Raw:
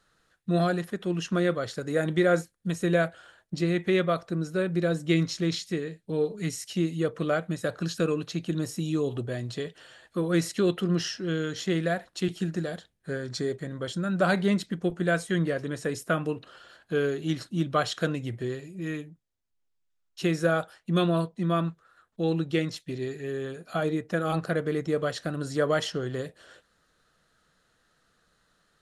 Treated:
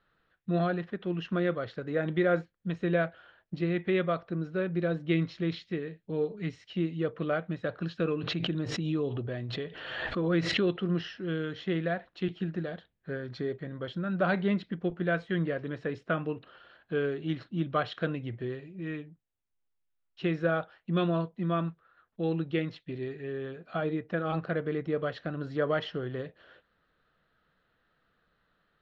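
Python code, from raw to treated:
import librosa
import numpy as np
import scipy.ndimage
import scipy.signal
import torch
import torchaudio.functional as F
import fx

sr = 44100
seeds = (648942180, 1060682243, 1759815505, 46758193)

y = scipy.signal.sosfilt(scipy.signal.butter(4, 3400.0, 'lowpass', fs=sr, output='sos'), x)
y = fx.pre_swell(y, sr, db_per_s=39.0, at=(8.04, 10.82))
y = y * librosa.db_to_amplitude(-3.5)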